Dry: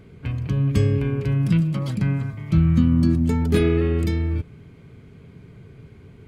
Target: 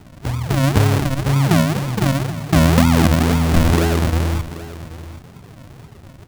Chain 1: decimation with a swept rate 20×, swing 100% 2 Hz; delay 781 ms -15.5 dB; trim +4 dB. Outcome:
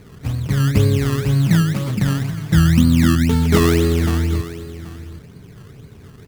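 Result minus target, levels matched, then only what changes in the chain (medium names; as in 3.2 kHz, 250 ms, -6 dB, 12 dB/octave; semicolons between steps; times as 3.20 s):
decimation with a swept rate: distortion -12 dB
change: decimation with a swept rate 74×, swing 100% 2 Hz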